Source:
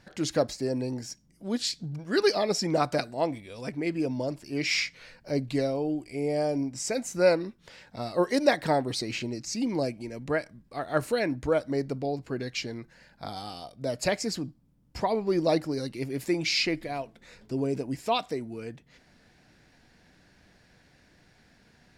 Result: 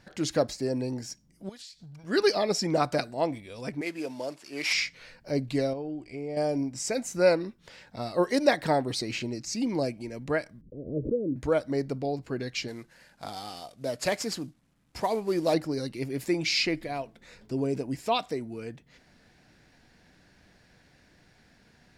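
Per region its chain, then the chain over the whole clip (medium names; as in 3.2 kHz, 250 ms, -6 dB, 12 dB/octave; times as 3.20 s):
1.49–2.04 s: peaking EQ 280 Hz -15 dB 2.3 oct + compression 10:1, threshold -43 dBFS
3.81–4.73 s: CVSD coder 64 kbps + frequency weighting A
5.73–6.37 s: compression 2.5:1, threshold -34 dBFS + distance through air 84 m
10.61–11.36 s: gate -54 dBFS, range -27 dB + steep low-pass 520 Hz 72 dB/octave + swell ahead of each attack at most 120 dB/s
12.68–15.54 s: CVSD coder 64 kbps + bass shelf 200 Hz -6.5 dB
whole clip: none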